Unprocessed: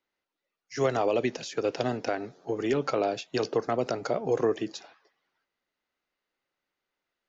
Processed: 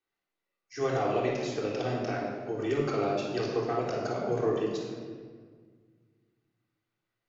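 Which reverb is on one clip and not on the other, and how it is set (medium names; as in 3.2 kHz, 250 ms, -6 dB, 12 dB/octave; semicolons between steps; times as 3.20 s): simulated room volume 2100 m³, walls mixed, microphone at 3.6 m; trim -8 dB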